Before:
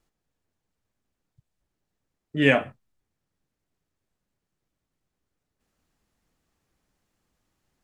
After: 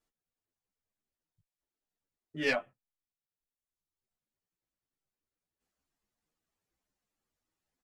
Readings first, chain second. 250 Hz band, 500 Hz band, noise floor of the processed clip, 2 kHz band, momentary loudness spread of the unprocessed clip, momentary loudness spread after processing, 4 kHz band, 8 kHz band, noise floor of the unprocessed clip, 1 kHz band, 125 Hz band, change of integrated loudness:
−15.0 dB, −10.5 dB, below −85 dBFS, −9.0 dB, 10 LU, 10 LU, −8.5 dB, can't be measured, −83 dBFS, −10.0 dB, −19.5 dB, −10.5 dB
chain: stylus tracing distortion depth 0.055 ms
bass and treble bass −5 dB, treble +2 dB
reverb reduction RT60 1.2 s
barber-pole flanger 10.7 ms +0.97 Hz
level −6 dB

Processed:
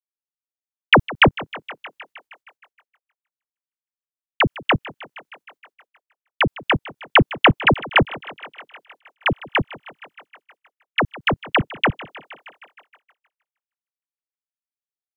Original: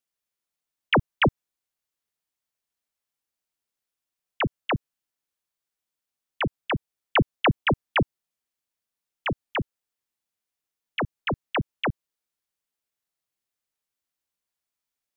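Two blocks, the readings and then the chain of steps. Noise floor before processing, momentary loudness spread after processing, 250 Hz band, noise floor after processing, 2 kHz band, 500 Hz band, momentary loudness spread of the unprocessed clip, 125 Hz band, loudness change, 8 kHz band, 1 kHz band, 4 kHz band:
below −85 dBFS, 21 LU, +5.5 dB, below −85 dBFS, +10.0 dB, +6.5 dB, 9 LU, +5.0 dB, +8.0 dB, can't be measured, +8.0 dB, +10.0 dB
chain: feedback echo with a high-pass in the loop 156 ms, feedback 73%, high-pass 310 Hz, level −14 dB
transient designer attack +7 dB, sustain +2 dB
downward expander −49 dBFS
level +3 dB

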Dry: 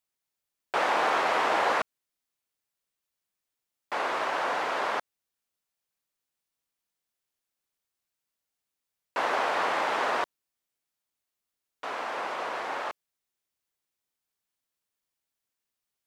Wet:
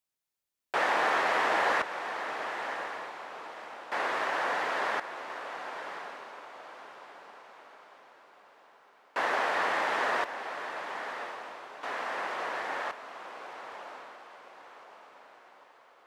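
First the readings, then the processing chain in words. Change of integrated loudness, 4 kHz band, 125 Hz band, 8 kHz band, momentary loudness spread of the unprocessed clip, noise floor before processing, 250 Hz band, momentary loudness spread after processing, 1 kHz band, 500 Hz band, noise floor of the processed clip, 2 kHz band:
−3.5 dB, −1.5 dB, can't be measured, −2.0 dB, 12 LU, below −85 dBFS, −2.0 dB, 22 LU, −1.5 dB, −2.0 dB, −62 dBFS, +1.5 dB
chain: feedback delay with all-pass diffusion 1,105 ms, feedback 44%, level −8.5 dB
dynamic equaliser 1,800 Hz, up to +6 dB, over −48 dBFS, Q 4.4
level −2.5 dB

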